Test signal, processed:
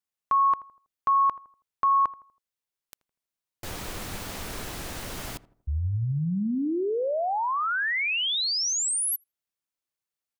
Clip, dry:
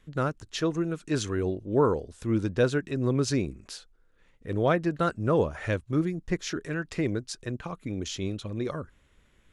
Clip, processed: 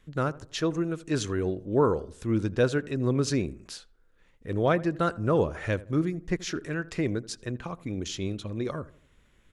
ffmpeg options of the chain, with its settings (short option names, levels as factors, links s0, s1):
-filter_complex "[0:a]asplit=2[s0][s1];[s1]adelay=81,lowpass=f=1300:p=1,volume=0.126,asplit=2[s2][s3];[s3]adelay=81,lowpass=f=1300:p=1,volume=0.43,asplit=2[s4][s5];[s5]adelay=81,lowpass=f=1300:p=1,volume=0.43,asplit=2[s6][s7];[s7]adelay=81,lowpass=f=1300:p=1,volume=0.43[s8];[s0][s2][s4][s6][s8]amix=inputs=5:normalize=0"